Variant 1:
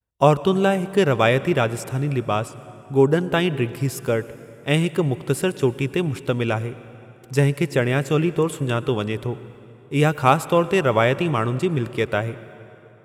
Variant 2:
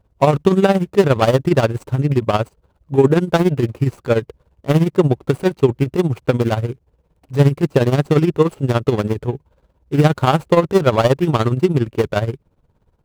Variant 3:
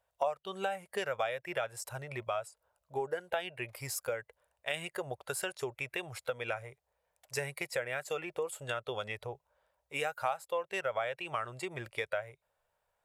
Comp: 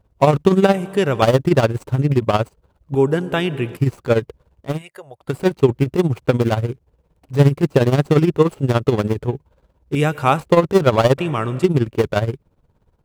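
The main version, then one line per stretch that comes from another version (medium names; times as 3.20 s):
2
0.74–1.22 s: from 1
2.95–3.77 s: from 1
4.70–5.31 s: from 3, crossfade 0.24 s
9.95–10.40 s: from 1
11.18–11.64 s: from 1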